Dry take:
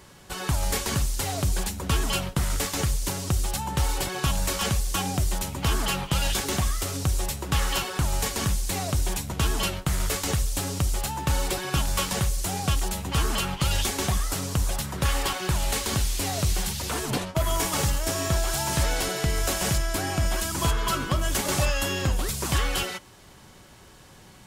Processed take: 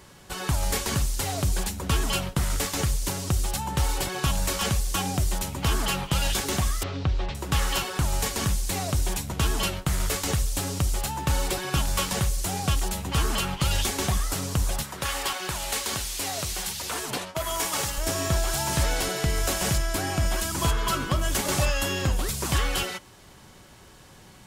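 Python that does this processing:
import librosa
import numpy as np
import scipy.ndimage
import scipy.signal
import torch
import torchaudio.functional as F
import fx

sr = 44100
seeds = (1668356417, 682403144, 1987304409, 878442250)

y = fx.lowpass(x, sr, hz=3900.0, slope=24, at=(6.83, 7.35))
y = fx.low_shelf(y, sr, hz=300.0, db=-12.0, at=(14.83, 17.98))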